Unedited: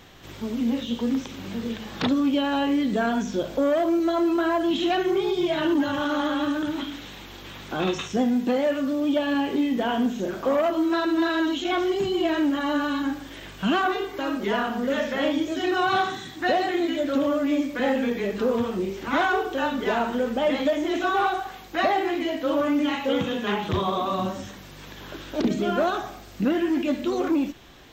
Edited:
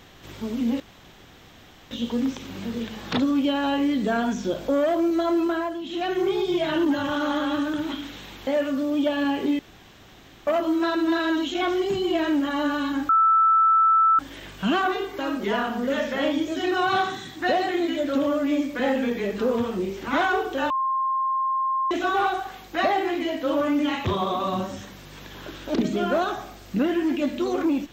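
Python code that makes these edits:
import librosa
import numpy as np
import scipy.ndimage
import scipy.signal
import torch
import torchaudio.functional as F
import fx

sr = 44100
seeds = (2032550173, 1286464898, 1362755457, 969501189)

y = fx.edit(x, sr, fx.insert_room_tone(at_s=0.8, length_s=1.11),
    fx.fade_down_up(start_s=4.31, length_s=0.81, db=-11.0, fade_s=0.4),
    fx.cut(start_s=7.36, length_s=1.21),
    fx.room_tone_fill(start_s=9.69, length_s=0.88),
    fx.insert_tone(at_s=13.19, length_s=1.1, hz=1320.0, db=-14.5),
    fx.bleep(start_s=19.7, length_s=1.21, hz=1060.0, db=-21.0),
    fx.cut(start_s=23.05, length_s=0.66), tone=tone)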